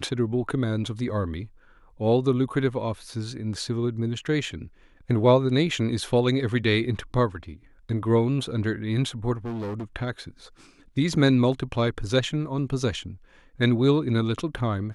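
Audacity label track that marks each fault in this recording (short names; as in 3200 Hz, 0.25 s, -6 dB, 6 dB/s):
9.450000	9.840000	clipped -28.5 dBFS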